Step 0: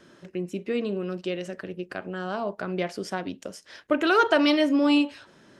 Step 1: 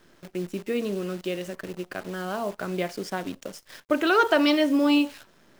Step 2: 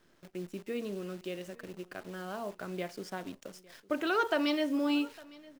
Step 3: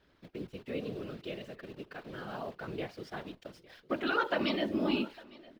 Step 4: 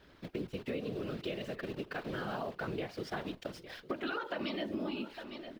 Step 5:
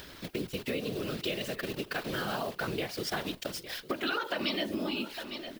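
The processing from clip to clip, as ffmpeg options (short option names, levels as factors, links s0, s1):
-af "acrusher=bits=8:dc=4:mix=0:aa=0.000001"
-af "aecho=1:1:856:0.075,volume=0.355"
-af "highshelf=f=5300:t=q:w=1.5:g=-9.5,afftfilt=real='hypot(re,im)*cos(2*PI*random(0))':imag='hypot(re,im)*sin(2*PI*random(1))':win_size=512:overlap=0.75,volume=1.68"
-af "alimiter=level_in=1.06:limit=0.0631:level=0:latency=1:release=352,volume=0.944,acompressor=threshold=0.00794:ratio=6,volume=2.37"
-af "crystalizer=i=4:c=0,acompressor=mode=upward:threshold=0.00631:ratio=2.5,volume=1.41"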